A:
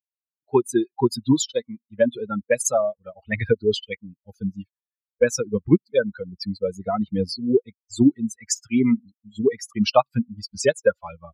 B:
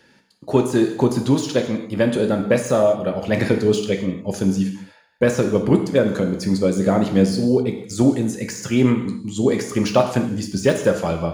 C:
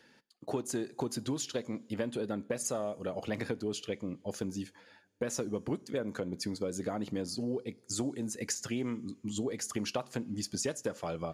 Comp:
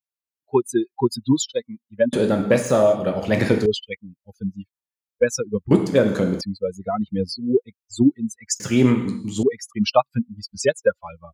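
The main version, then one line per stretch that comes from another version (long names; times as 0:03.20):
A
0:02.13–0:03.66: punch in from B
0:05.71–0:06.41: punch in from B
0:08.60–0:09.43: punch in from B
not used: C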